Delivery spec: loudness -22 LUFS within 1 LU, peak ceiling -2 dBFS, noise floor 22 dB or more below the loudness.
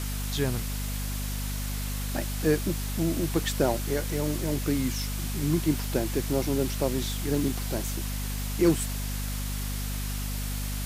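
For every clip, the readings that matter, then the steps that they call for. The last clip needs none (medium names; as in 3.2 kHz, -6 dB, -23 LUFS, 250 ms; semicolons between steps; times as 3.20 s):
hum 50 Hz; highest harmonic 250 Hz; hum level -29 dBFS; noise floor -31 dBFS; noise floor target -51 dBFS; loudness -29.0 LUFS; peak level -11.0 dBFS; loudness target -22.0 LUFS
-> hum notches 50/100/150/200/250 Hz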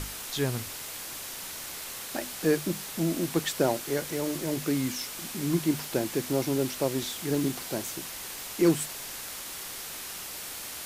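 hum not found; noise floor -39 dBFS; noise floor target -53 dBFS
-> noise reduction 14 dB, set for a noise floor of -39 dBFS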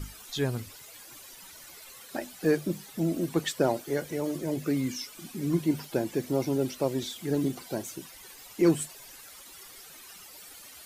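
noise floor -49 dBFS; noise floor target -52 dBFS
-> noise reduction 6 dB, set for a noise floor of -49 dBFS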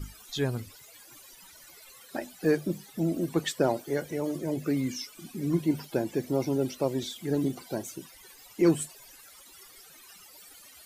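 noise floor -53 dBFS; loudness -30.0 LUFS; peak level -12.0 dBFS; loudness target -22.0 LUFS
-> trim +8 dB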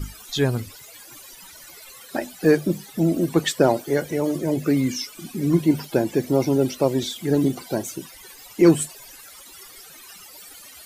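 loudness -22.0 LUFS; peak level -4.0 dBFS; noise floor -45 dBFS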